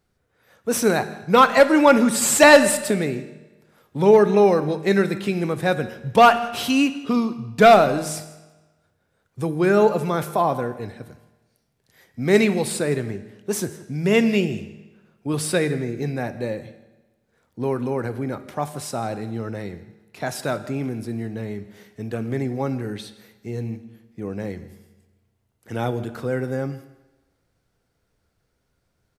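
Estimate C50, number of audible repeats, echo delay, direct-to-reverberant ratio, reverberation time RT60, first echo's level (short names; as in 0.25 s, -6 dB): 13.0 dB, 1, 0.164 s, 10.5 dB, 1.2 s, -20.5 dB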